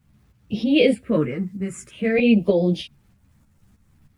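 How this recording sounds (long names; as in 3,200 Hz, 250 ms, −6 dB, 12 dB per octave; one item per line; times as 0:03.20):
phaser sweep stages 4, 0.49 Hz, lowest notch 610–1,400 Hz
a quantiser's noise floor 12 bits, dither none
tremolo saw up 3.2 Hz, depth 60%
a shimmering, thickened sound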